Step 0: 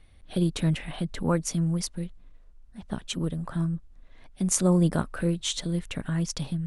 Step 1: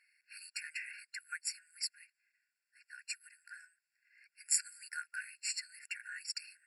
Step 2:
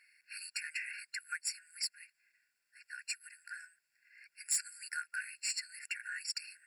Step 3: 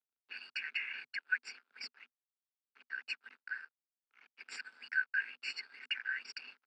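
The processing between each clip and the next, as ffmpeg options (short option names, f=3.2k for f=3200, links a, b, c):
-af "afftfilt=real='re*eq(mod(floor(b*sr/1024/1400),2),1)':imag='im*eq(mod(floor(b*sr/1024/1400),2),1)':win_size=1024:overlap=0.75,volume=-1dB"
-filter_complex "[0:a]asplit=2[a][b];[b]acompressor=threshold=-46dB:ratio=6,volume=-0.5dB[c];[a][c]amix=inputs=2:normalize=0,asoftclip=type=tanh:threshold=-24dB"
-af "aeval=exprs='sgn(val(0))*max(abs(val(0))-0.00141,0)':c=same,highpass=110,equalizer=f=160:t=q:w=4:g=9,equalizer=f=340:t=q:w=4:g=6,equalizer=f=530:t=q:w=4:g=-4,equalizer=f=800:t=q:w=4:g=3,equalizer=f=1.3k:t=q:w=4:g=10,equalizer=f=1.8k:t=q:w=4:g=-7,lowpass=f=3.5k:w=0.5412,lowpass=f=3.5k:w=1.3066,afreqshift=86,volume=5dB"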